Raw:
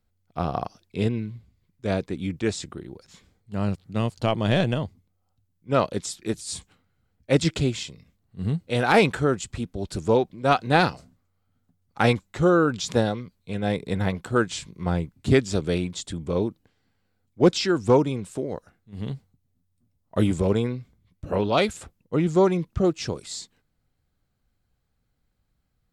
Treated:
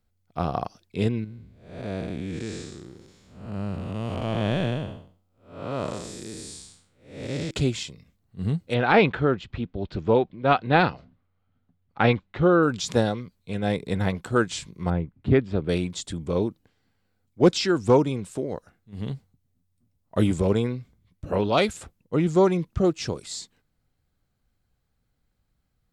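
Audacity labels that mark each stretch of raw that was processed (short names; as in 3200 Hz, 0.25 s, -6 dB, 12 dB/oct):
1.240000	7.510000	time blur width 0.298 s
8.740000	12.630000	LPF 3700 Hz 24 dB/oct
14.900000	15.690000	air absorption 450 m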